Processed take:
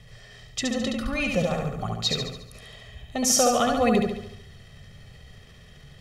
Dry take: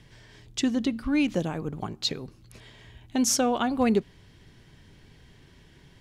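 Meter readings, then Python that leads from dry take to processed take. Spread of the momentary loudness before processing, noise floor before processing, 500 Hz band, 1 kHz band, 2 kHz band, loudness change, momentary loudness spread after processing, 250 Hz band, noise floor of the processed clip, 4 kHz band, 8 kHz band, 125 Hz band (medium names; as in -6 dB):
11 LU, -56 dBFS, +4.5 dB, +5.0 dB, +5.0 dB, +2.0 dB, 24 LU, -1.5 dB, -49 dBFS, +4.5 dB, +4.5 dB, +4.5 dB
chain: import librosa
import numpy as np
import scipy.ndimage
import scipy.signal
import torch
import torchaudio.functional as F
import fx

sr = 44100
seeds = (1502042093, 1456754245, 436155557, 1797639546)

p1 = x + 0.96 * np.pad(x, (int(1.6 * sr / 1000.0), 0))[:len(x)]
p2 = fx.transient(p1, sr, attack_db=-1, sustain_db=5)
y = p2 + fx.echo_feedback(p2, sr, ms=71, feedback_pct=52, wet_db=-3.5, dry=0)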